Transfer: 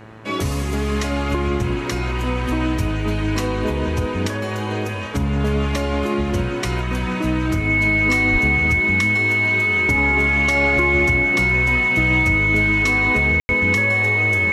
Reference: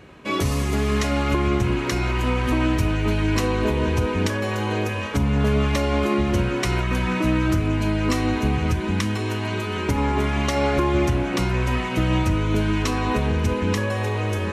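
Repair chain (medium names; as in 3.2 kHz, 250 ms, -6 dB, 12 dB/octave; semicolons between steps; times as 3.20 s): de-hum 110.2 Hz, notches 18; band-stop 2.2 kHz, Q 30; 8.32–8.44 s: high-pass 140 Hz 24 dB/octave; room tone fill 13.40–13.49 s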